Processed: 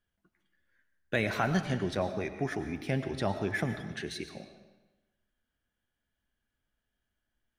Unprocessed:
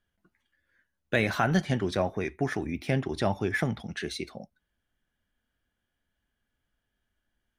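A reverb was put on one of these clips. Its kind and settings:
comb and all-pass reverb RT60 1.1 s, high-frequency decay 0.9×, pre-delay 65 ms, DRR 9 dB
level −4 dB

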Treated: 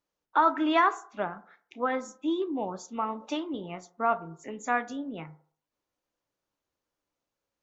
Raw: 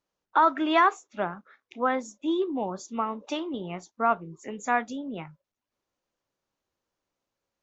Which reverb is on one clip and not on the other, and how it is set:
feedback delay network reverb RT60 0.52 s, low-frequency decay 0.75×, high-frequency decay 0.3×, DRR 11 dB
level −2.5 dB

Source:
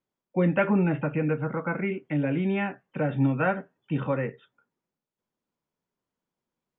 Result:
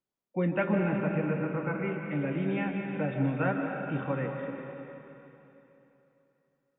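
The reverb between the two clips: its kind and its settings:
comb and all-pass reverb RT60 3.2 s, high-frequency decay 0.95×, pre-delay 100 ms, DRR 2 dB
level −5.5 dB

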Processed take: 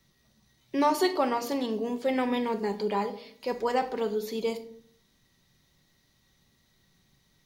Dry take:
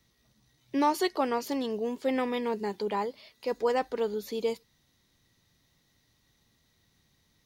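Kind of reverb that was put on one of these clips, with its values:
rectangular room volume 830 cubic metres, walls furnished, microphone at 1.1 metres
level +1 dB

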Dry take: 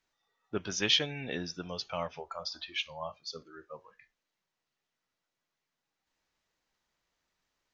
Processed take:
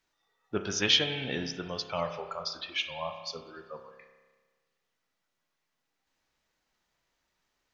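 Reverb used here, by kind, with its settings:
spring reverb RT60 1.4 s, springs 30 ms, chirp 70 ms, DRR 6.5 dB
level +2.5 dB

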